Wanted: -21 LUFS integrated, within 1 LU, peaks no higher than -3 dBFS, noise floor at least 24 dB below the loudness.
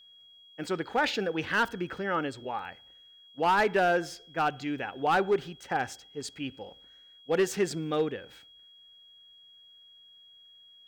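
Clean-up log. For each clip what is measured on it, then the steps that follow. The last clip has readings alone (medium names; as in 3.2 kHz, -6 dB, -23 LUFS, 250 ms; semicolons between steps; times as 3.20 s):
clipped samples 0.6%; clipping level -19.0 dBFS; steady tone 3.3 kHz; tone level -53 dBFS; loudness -29.5 LUFS; peak level -19.0 dBFS; loudness target -21.0 LUFS
-> clip repair -19 dBFS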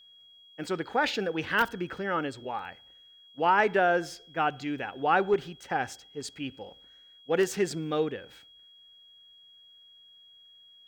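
clipped samples 0.0%; steady tone 3.3 kHz; tone level -53 dBFS
-> band-stop 3.3 kHz, Q 30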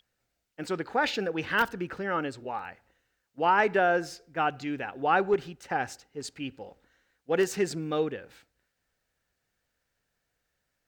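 steady tone not found; loudness -29.0 LUFS; peak level -10.0 dBFS; loudness target -21.0 LUFS
-> trim +8 dB; peak limiter -3 dBFS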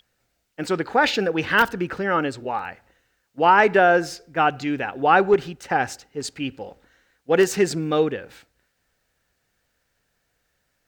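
loudness -21.0 LUFS; peak level -3.0 dBFS; noise floor -72 dBFS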